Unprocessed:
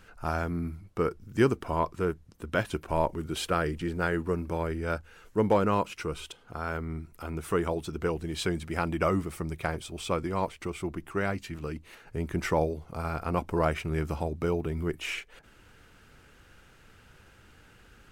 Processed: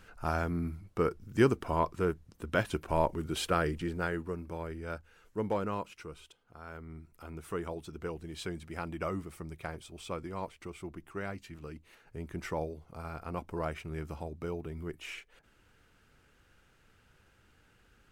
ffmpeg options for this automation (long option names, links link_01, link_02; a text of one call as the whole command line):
ffmpeg -i in.wav -af "volume=5.5dB,afade=type=out:start_time=3.66:duration=0.67:silence=0.446684,afade=type=out:start_time=5.6:duration=0.85:silence=0.421697,afade=type=in:start_time=6.45:duration=0.72:silence=0.446684" out.wav